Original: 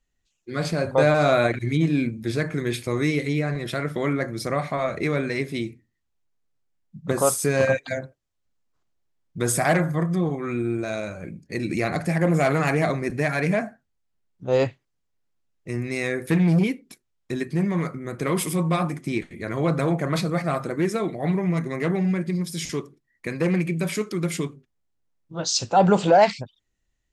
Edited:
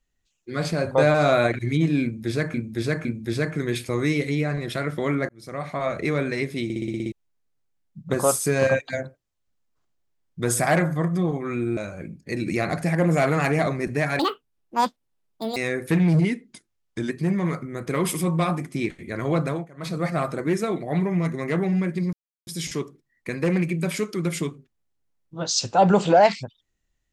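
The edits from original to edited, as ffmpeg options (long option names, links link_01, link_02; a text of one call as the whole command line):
ffmpeg -i in.wav -filter_complex "[0:a]asplit=20[link_01][link_02][link_03][link_04][link_05][link_06][link_07][link_08][link_09][link_10][link_11][link_12][link_13][link_14][link_15][link_16][link_17][link_18][link_19][link_20];[link_01]atrim=end=2.542[link_21];[link_02]atrim=start=2.028:end=2.542[link_22];[link_03]atrim=start=2.028:end=4.27,asetpts=PTS-STARTPTS,afade=type=out:start_time=2.238:duration=0.004:curve=hsin[link_23];[link_04]atrim=start=4.27:end=5.682,asetpts=PTS-STARTPTS,afade=type=in:duration=0.61[link_24];[link_05]atrim=start=5.618:end=5.682[link_25];[link_06]atrim=start=5.618:end=5.682[link_26];[link_07]atrim=start=5.618:end=5.682[link_27];[link_08]atrim=start=5.618:end=5.682[link_28];[link_09]atrim=start=5.618:end=5.682[link_29];[link_10]atrim=start=5.618:end=5.682[link_30];[link_11]atrim=start=5.618:end=5.682[link_31];[link_12]atrim=start=6.098:end=10.752[link_32];[link_13]atrim=start=10.998:end=13.424[link_33];[link_14]atrim=start=13.42:end=15.96,asetpts=PTS-STARTPTS,asetrate=81585,aresample=44100,atrim=end_sample=60548,asetpts=PTS-STARTPTS[link_34];[link_15]atrim=start=15.956:end=16.544[link_35];[link_16]atrim=start=16.54:end=17.42,asetpts=PTS-STARTPTS,asetrate=40572,aresample=44100[link_36];[link_17]atrim=start=17.416:end=20,asetpts=PTS-STARTPTS,afade=type=out:start_time=2.204:duration=0.38:curve=qsin:silence=0.0794328[link_37];[link_18]atrim=start=20:end=20.08,asetpts=PTS-STARTPTS,volume=-22dB[link_38];[link_19]atrim=start=20.08:end=22.45,asetpts=PTS-STARTPTS,afade=type=in:duration=0.38:curve=qsin:silence=0.0794328,afade=type=out:start_time=2.366:duration=0.004:curve=hsin,apad=pad_dur=0.34[link_39];[link_20]atrim=start=22.45,asetpts=PTS-STARTPTS,afade=type=in:duration=0.004:curve=hsin[link_40];[link_21][link_22]acrossfade=duration=0.004:curve1=hsin:curve2=hsin[link_41];[link_23][link_24]concat=n=2:v=0:a=1[link_42];[link_41][link_42]acrossfade=duration=0.004:curve1=hsin:curve2=hsin[link_43];[link_43][link_25]acrossfade=duration=0.004:curve1=hsin:curve2=hsin[link_44];[link_44][link_26]acrossfade=duration=0.004:curve1=hsin:curve2=hsin[link_45];[link_45][link_27]acrossfade=duration=0.004:curve1=hsin:curve2=hsin[link_46];[link_46][link_28]acrossfade=duration=0.004:curve1=hsin:curve2=hsin[link_47];[link_47][link_29]acrossfade=duration=0.004:curve1=hsin:curve2=hsin[link_48];[link_48][link_30]acrossfade=duration=0.004:curve1=hsin:curve2=hsin[link_49];[link_49][link_31]acrossfade=duration=0.004:curve1=hsin:curve2=hsin[link_50];[link_50][link_32]acrossfade=duration=0.004:curve1=hsin:curve2=hsin[link_51];[link_51][link_33]acrossfade=duration=0.004:curve1=hsin:curve2=hsin[link_52];[link_52][link_34]acrossfade=duration=0.004:curve1=hsin:curve2=hsin[link_53];[link_53][link_35]acrossfade=duration=0.004:curve1=hsin:curve2=hsin[link_54];[link_54][link_36]acrossfade=duration=0.004:curve1=hsin:curve2=hsin[link_55];[link_37][link_38][link_39][link_40]concat=n=4:v=0:a=1[link_56];[link_55][link_56]acrossfade=duration=0.004:curve1=hsin:curve2=hsin" out.wav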